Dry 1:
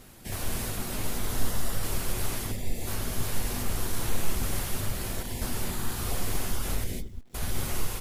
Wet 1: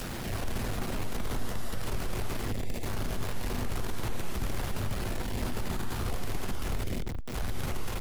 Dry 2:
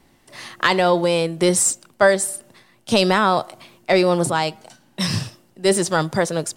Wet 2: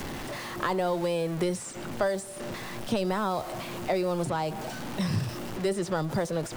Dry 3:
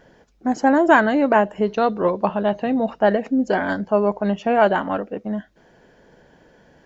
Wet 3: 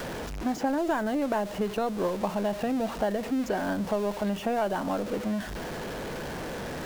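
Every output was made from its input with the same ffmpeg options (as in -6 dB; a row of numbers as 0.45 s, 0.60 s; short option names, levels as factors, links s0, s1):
-filter_complex "[0:a]aeval=exprs='val(0)+0.5*0.0562*sgn(val(0))':c=same,acrossover=split=90|1200|2800|6400[s0][s1][s2][s3][s4];[s0]acompressor=threshold=0.0794:ratio=4[s5];[s1]acompressor=threshold=0.0794:ratio=4[s6];[s2]acompressor=threshold=0.00891:ratio=4[s7];[s3]acompressor=threshold=0.00562:ratio=4[s8];[s4]acompressor=threshold=0.00501:ratio=4[s9];[s5][s6][s7][s8][s9]amix=inputs=5:normalize=0,volume=0.631"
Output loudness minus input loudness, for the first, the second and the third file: -3.0 LU, -11.5 LU, -10.0 LU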